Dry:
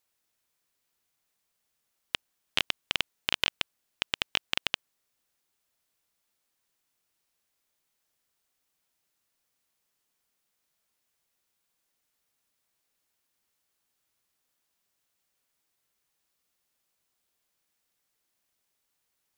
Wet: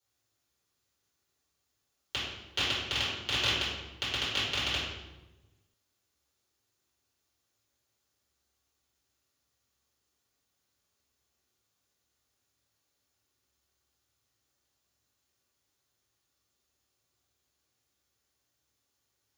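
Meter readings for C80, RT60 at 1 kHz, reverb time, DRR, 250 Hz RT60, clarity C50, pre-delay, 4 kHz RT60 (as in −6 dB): 3.0 dB, 1.0 s, 1.1 s, −13.0 dB, can't be measured, 0.0 dB, 3 ms, 0.75 s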